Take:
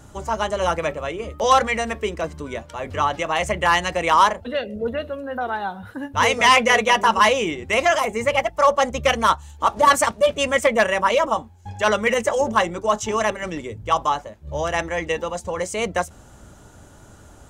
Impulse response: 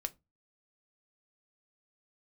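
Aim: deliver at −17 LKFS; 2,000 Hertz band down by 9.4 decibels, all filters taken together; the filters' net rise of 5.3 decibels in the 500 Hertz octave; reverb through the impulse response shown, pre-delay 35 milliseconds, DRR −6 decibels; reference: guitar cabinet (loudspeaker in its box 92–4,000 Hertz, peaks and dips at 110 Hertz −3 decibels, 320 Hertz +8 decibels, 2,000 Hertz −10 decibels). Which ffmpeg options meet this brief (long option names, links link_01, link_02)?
-filter_complex "[0:a]equalizer=frequency=500:width_type=o:gain=6,equalizer=frequency=2000:width_type=o:gain=-6.5,asplit=2[link_01][link_02];[1:a]atrim=start_sample=2205,adelay=35[link_03];[link_02][link_03]afir=irnorm=-1:irlink=0,volume=6.5dB[link_04];[link_01][link_04]amix=inputs=2:normalize=0,highpass=92,equalizer=frequency=110:width_type=q:width=4:gain=-3,equalizer=frequency=320:width_type=q:width=4:gain=8,equalizer=frequency=2000:width_type=q:width=4:gain=-10,lowpass=frequency=4000:width=0.5412,lowpass=frequency=4000:width=1.3066,volume=-5dB"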